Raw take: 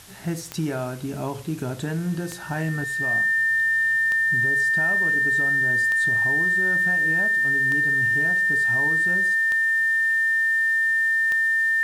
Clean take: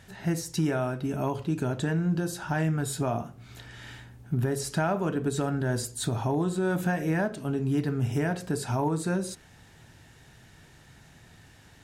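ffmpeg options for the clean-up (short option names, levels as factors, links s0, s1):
-af "adeclick=t=4,bandreject=f=1800:w=30,afwtdn=0.005,asetnsamples=n=441:p=0,asendcmd='2.84 volume volume 6.5dB',volume=1"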